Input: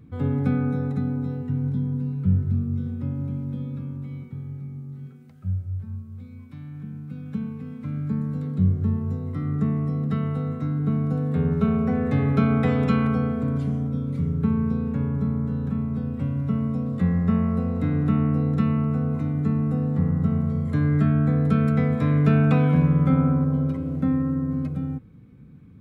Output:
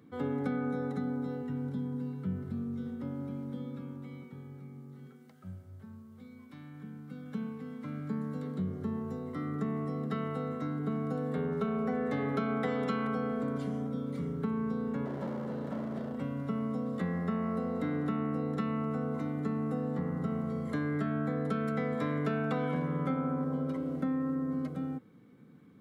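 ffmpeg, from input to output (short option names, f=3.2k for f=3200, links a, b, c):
-filter_complex "[0:a]asettb=1/sr,asplit=3[a][b][c];[a]atrim=end=15.054[d];[b]atrim=start=15.05:end=16.16,asetpts=PTS-STARTPTS,afade=t=in:d=0.004:c=qsin,afade=t=out:st=1.106:d=0.004:c=qsin,volume=26dB,asoftclip=hard,volume=-26dB[e];[c]atrim=start=16.156[f];[d][e]acrossfade=d=0.004:c1=hsin:c2=qsin[g];[g][f]acrossfade=d=0.004:c1=qsin:c2=hsin,highpass=300,bandreject=f=2.5k:w=8.8,acompressor=threshold=-29dB:ratio=4"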